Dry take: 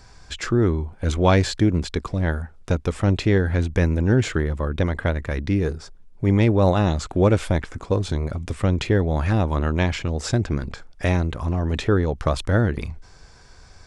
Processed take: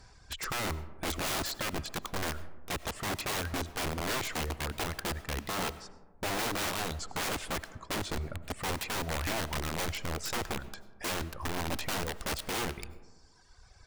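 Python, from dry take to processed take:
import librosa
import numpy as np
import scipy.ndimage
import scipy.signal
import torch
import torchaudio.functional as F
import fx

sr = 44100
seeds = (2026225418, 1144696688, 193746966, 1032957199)

y = fx.cheby_harmonics(x, sr, harmonics=(2, 4), levels_db=(-20, -43), full_scale_db=-5.0)
y = fx.dereverb_blind(y, sr, rt60_s=1.5)
y = (np.mod(10.0 ** (21.5 / 20.0) * y + 1.0, 2.0) - 1.0) / 10.0 ** (21.5 / 20.0)
y = fx.rev_freeverb(y, sr, rt60_s=1.4, hf_ratio=0.3, predelay_ms=55, drr_db=15.5)
y = F.gain(torch.from_numpy(y), -6.5).numpy()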